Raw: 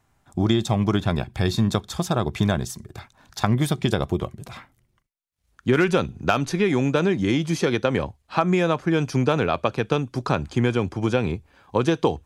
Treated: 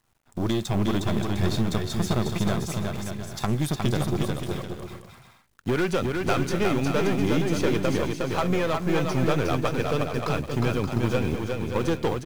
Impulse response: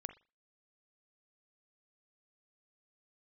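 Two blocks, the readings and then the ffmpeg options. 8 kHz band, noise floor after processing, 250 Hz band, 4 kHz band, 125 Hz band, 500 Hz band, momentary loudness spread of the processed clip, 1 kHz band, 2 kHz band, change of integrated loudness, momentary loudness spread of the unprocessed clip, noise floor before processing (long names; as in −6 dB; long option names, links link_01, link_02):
−0.5 dB, −56 dBFS, −2.5 dB, −2.5 dB, −2.0 dB, −2.5 dB, 7 LU, −3.5 dB, −3.0 dB, −3.0 dB, 8 LU, −68 dBFS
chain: -filter_complex "[0:a]aeval=exprs='0.631*(cos(1*acos(clip(val(0)/0.631,-1,1)))-cos(1*PI/2))+0.0794*(cos(6*acos(clip(val(0)/0.631,-1,1)))-cos(6*PI/2))':channel_layout=same,volume=13.5dB,asoftclip=hard,volume=-13.5dB,acrusher=bits=8:dc=4:mix=0:aa=0.000001,asplit=2[link_01][link_02];[link_02]aecho=0:1:360|576|705.6|783.4|830:0.631|0.398|0.251|0.158|0.1[link_03];[link_01][link_03]amix=inputs=2:normalize=0,volume=-3.5dB"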